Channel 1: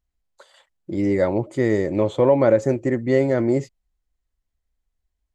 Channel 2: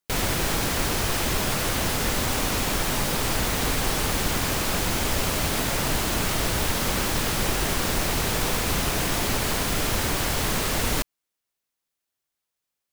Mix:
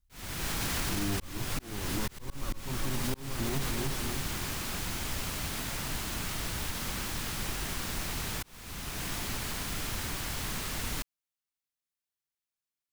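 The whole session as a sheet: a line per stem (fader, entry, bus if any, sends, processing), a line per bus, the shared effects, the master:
-9.0 dB, 0.00 s, no send, echo send -8.5 dB, minimum comb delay 0.68 ms; tilt -3.5 dB/oct
3.56 s -3 dB -> 3.85 s -9.5 dB, 0.00 s, no send, no echo send, dry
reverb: off
echo: feedback echo 0.306 s, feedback 54%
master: bell 520 Hz -7 dB 1.4 oct; auto swell 0.646 s; limiter -22 dBFS, peak gain reduction 8 dB

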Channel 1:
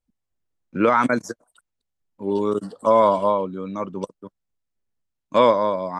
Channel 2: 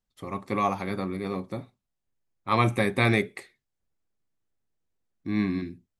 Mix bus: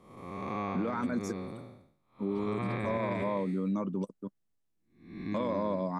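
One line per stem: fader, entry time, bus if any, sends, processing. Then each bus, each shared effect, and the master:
-9.0 dB, 0.00 s, no send, bell 210 Hz +11.5 dB 1.7 oct; limiter -9 dBFS, peak gain reduction 8 dB
-3.0 dB, 0.00 s, no send, time blur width 0.356 s; treble ducked by the level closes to 2900 Hz, closed at -24.5 dBFS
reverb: off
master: high shelf 10000 Hz +3.5 dB; limiter -24 dBFS, peak gain reduction 11 dB

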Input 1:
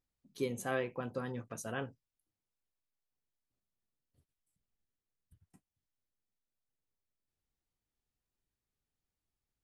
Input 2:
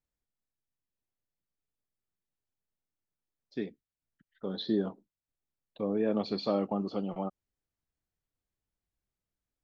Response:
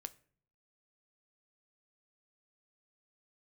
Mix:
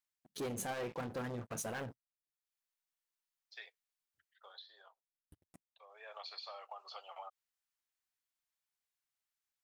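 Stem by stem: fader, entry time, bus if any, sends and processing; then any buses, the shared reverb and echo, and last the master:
-12.0 dB, 0.00 s, no send, low shelf 96 Hz +4.5 dB; sample leveller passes 5
+2.0 dB, 0.00 s, no send, Bessel high-pass 1200 Hz, order 8; compressor 12:1, threshold -46 dBFS, peak gain reduction 11.5 dB; auto duck -18 dB, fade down 1.15 s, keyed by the first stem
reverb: off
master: low shelf 70 Hz -8 dB; core saturation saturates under 280 Hz

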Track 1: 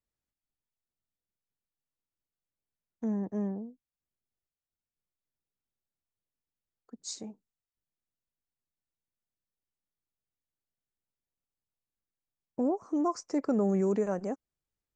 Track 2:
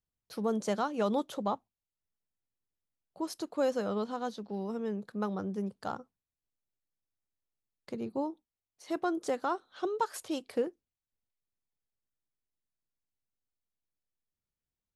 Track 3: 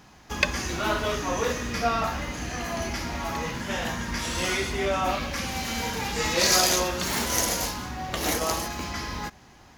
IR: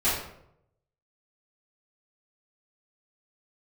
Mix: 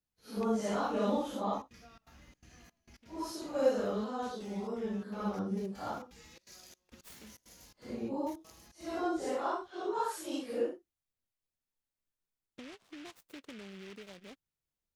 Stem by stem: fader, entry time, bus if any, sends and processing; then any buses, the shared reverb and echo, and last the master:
-10.5 dB, 0.00 s, no send, compressor 2.5:1, threshold -40 dBFS, peak gain reduction 11 dB; noise-modulated delay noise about 2200 Hz, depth 0.21 ms; auto duck -18 dB, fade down 0.25 s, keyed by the second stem
-1.0 dB, 0.00 s, no send, phase scrambler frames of 0.2 s
-18.5 dB, 0.00 s, no send, bell 860 Hz -7.5 dB 2.1 oct; compressor 4:1, threshold -36 dBFS, peak gain reduction 15 dB; step gate "..x.xxx.xxx.xxx" 167 bpm -24 dB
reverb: off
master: dry

